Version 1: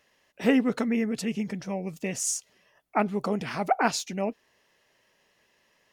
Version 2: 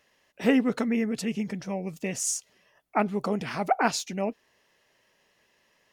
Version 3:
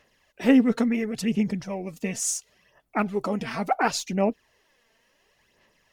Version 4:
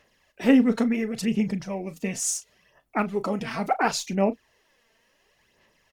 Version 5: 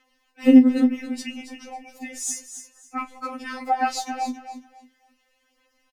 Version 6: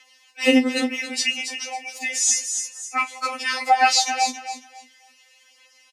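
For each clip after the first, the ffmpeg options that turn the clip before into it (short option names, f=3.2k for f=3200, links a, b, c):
-af anull
-af "lowshelf=f=73:g=9,aphaser=in_gain=1:out_gain=1:delay=4.5:decay=0.49:speed=0.71:type=sinusoidal"
-filter_complex "[0:a]asplit=2[a][b];[b]adelay=36,volume=-14dB[c];[a][c]amix=inputs=2:normalize=0"
-af "aecho=1:1:274|548|822:0.299|0.0687|0.0158,afftfilt=real='re*3.46*eq(mod(b,12),0)':imag='im*3.46*eq(mod(b,12),0)':win_size=2048:overlap=0.75"
-filter_complex "[0:a]acrossover=split=5500[a][b];[b]acompressor=threshold=-43dB:ratio=4:attack=1:release=60[c];[a][c]amix=inputs=2:normalize=0,highpass=540,lowpass=7.7k,aexciter=amount=3.6:drive=2.7:freq=2k,volume=6.5dB"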